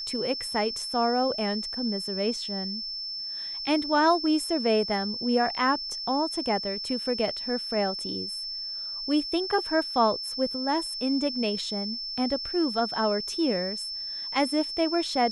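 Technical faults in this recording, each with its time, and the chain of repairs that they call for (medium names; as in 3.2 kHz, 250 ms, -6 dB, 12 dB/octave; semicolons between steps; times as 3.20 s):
whine 5.3 kHz -32 dBFS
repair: band-stop 5.3 kHz, Q 30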